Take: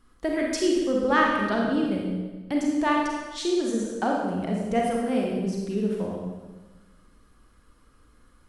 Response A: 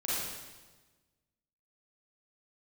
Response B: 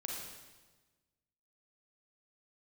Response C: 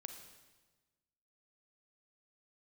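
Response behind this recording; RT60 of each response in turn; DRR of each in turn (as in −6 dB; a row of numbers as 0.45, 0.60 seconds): B; 1.3, 1.3, 1.3 seconds; −9.0, −1.5, 5.5 decibels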